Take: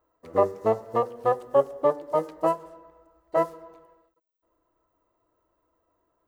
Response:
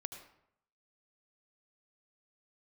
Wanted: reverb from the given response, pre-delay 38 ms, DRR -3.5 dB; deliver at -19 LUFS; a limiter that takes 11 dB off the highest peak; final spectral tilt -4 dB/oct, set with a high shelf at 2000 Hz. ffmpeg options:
-filter_complex "[0:a]highshelf=f=2k:g=-6,alimiter=limit=-19.5dB:level=0:latency=1,asplit=2[a][b];[1:a]atrim=start_sample=2205,adelay=38[c];[b][c]afir=irnorm=-1:irlink=0,volume=6dB[d];[a][d]amix=inputs=2:normalize=0,volume=8dB"

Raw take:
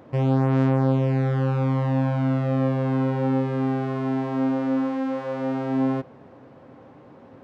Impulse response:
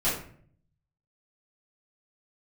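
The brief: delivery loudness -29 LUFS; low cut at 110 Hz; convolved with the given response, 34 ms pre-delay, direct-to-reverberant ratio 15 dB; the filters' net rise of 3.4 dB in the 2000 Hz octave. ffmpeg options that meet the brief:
-filter_complex "[0:a]highpass=110,equalizer=f=2k:t=o:g=4.5,asplit=2[a][b];[1:a]atrim=start_sample=2205,adelay=34[c];[b][c]afir=irnorm=-1:irlink=0,volume=-26dB[d];[a][d]amix=inputs=2:normalize=0,volume=-5.5dB"

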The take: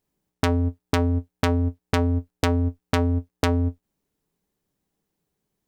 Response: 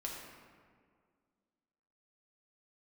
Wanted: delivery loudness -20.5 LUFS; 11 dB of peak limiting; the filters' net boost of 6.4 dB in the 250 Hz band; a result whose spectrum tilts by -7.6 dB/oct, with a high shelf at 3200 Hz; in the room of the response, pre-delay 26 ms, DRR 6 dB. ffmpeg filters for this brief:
-filter_complex "[0:a]equalizer=f=250:t=o:g=6.5,highshelf=f=3.2k:g=9,alimiter=limit=-6.5dB:level=0:latency=1,asplit=2[a][b];[1:a]atrim=start_sample=2205,adelay=26[c];[b][c]afir=irnorm=-1:irlink=0,volume=-6dB[d];[a][d]amix=inputs=2:normalize=0,volume=0.5dB"

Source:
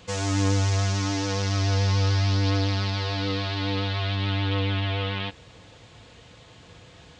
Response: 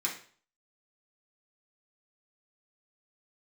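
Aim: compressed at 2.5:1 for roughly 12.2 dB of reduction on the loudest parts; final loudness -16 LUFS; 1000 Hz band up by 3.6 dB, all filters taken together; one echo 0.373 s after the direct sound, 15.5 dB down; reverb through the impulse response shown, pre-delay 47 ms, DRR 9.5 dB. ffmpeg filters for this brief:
-filter_complex "[0:a]equalizer=f=1k:t=o:g=4.5,acompressor=threshold=-39dB:ratio=2.5,aecho=1:1:373:0.168,asplit=2[a][b];[1:a]atrim=start_sample=2205,adelay=47[c];[b][c]afir=irnorm=-1:irlink=0,volume=-14.5dB[d];[a][d]amix=inputs=2:normalize=0,volume=20dB"

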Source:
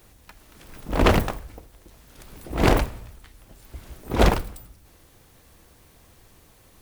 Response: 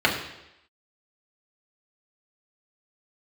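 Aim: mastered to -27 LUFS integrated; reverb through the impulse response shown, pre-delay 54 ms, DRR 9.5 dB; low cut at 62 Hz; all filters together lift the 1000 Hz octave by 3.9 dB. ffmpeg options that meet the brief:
-filter_complex "[0:a]highpass=62,equalizer=f=1k:t=o:g=5,asplit=2[a][b];[1:a]atrim=start_sample=2205,adelay=54[c];[b][c]afir=irnorm=-1:irlink=0,volume=-27.5dB[d];[a][d]amix=inputs=2:normalize=0,volume=-5dB"

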